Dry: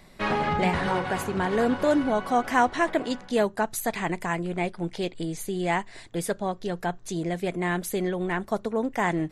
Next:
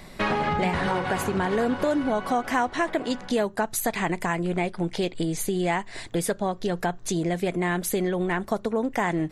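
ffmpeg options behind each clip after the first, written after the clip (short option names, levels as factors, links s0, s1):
-af "acompressor=threshold=0.0251:ratio=3,volume=2.51"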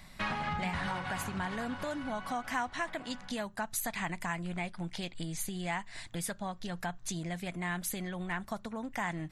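-af "equalizer=f=410:t=o:w=1.1:g=-14.5,volume=0.473"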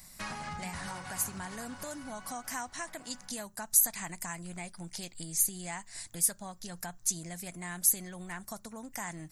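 -af "aexciter=amount=8.5:drive=1.4:freq=4900,volume=0.531"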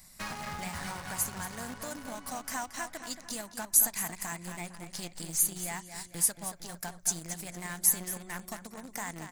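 -filter_complex "[0:a]asplit=2[s0][s1];[s1]adelay=227,lowpass=f=4800:p=1,volume=0.447,asplit=2[s2][s3];[s3]adelay=227,lowpass=f=4800:p=1,volume=0.51,asplit=2[s4][s5];[s5]adelay=227,lowpass=f=4800:p=1,volume=0.51,asplit=2[s6][s7];[s7]adelay=227,lowpass=f=4800:p=1,volume=0.51,asplit=2[s8][s9];[s9]adelay=227,lowpass=f=4800:p=1,volume=0.51,asplit=2[s10][s11];[s11]adelay=227,lowpass=f=4800:p=1,volume=0.51[s12];[s0][s2][s4][s6][s8][s10][s12]amix=inputs=7:normalize=0,asplit=2[s13][s14];[s14]acrusher=bits=5:mix=0:aa=0.000001,volume=0.501[s15];[s13][s15]amix=inputs=2:normalize=0,volume=0.75"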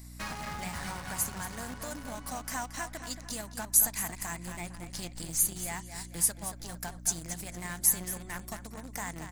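-af "aeval=exprs='val(0)+0.00501*(sin(2*PI*60*n/s)+sin(2*PI*2*60*n/s)/2+sin(2*PI*3*60*n/s)/3+sin(2*PI*4*60*n/s)/4+sin(2*PI*5*60*n/s)/5)':c=same"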